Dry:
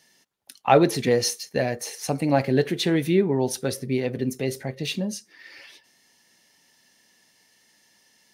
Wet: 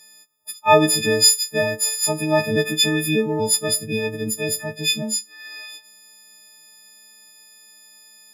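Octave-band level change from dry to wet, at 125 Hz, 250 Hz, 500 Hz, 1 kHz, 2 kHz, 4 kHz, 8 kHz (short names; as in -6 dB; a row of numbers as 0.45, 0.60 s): -0.5, 0.0, +1.5, +3.0, +8.0, +11.5, +12.5 dB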